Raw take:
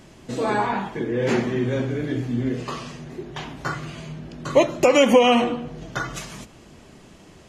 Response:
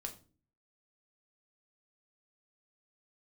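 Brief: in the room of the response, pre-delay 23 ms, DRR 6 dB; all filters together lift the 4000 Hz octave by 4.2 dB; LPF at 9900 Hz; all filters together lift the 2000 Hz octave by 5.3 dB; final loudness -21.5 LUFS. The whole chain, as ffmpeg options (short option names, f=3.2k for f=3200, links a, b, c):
-filter_complex "[0:a]lowpass=9.9k,equalizer=f=2k:t=o:g=6,equalizer=f=4k:t=o:g=3,asplit=2[a][b];[1:a]atrim=start_sample=2205,adelay=23[c];[b][c]afir=irnorm=-1:irlink=0,volume=-3.5dB[d];[a][d]amix=inputs=2:normalize=0,volume=-1.5dB"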